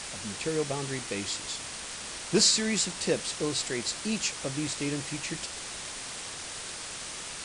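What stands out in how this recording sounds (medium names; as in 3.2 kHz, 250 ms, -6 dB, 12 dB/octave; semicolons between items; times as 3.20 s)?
a quantiser's noise floor 6-bit, dither triangular; WMA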